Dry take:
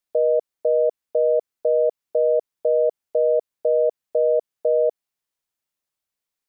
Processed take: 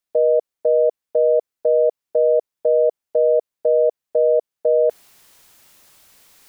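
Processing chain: dynamic EQ 520 Hz, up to +3 dB, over -26 dBFS, Q 0.9; reverse; upward compressor, threshold -26 dBFS; reverse

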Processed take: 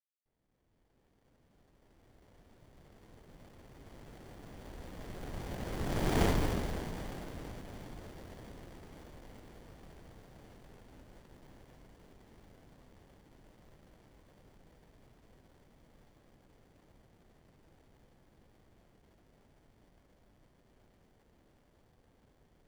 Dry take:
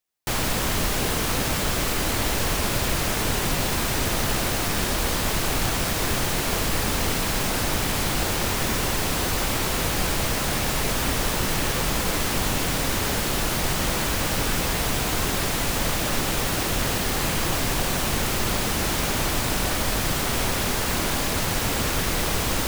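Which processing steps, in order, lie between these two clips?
opening faded in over 5.60 s; Doppler pass-by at 6.22, 17 m/s, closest 2.5 m; running maximum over 33 samples

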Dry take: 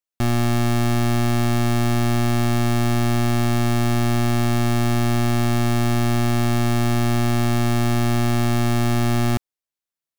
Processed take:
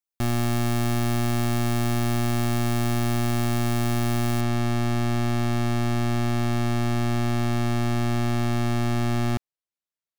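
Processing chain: high shelf 8400 Hz +5 dB, from 4.41 s -7.5 dB; gain -4.5 dB

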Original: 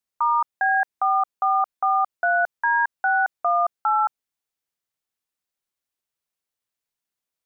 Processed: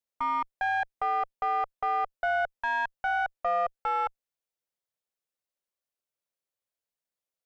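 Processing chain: one diode to ground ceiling -19 dBFS; bell 550 Hz +8.5 dB 0.62 oct; gain -7 dB

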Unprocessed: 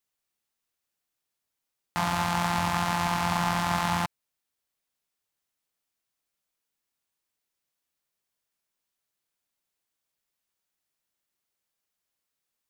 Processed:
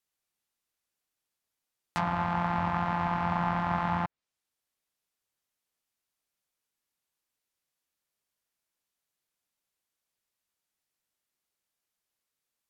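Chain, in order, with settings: treble ducked by the level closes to 1700 Hz, closed at -24.5 dBFS; gain -1.5 dB

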